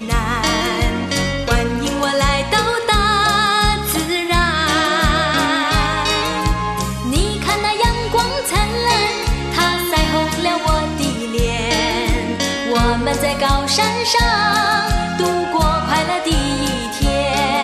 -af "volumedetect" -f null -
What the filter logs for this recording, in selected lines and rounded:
mean_volume: -16.9 dB
max_volume: -4.2 dB